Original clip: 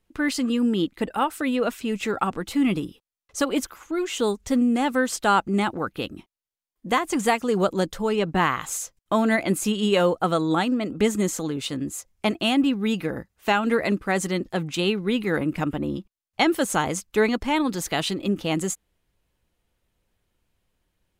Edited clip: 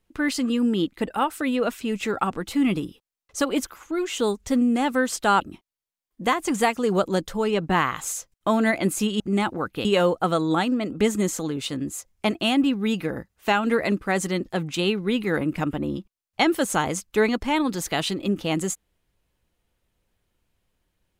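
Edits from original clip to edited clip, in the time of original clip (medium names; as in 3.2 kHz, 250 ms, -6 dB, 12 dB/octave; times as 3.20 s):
5.41–6.06 s: move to 9.85 s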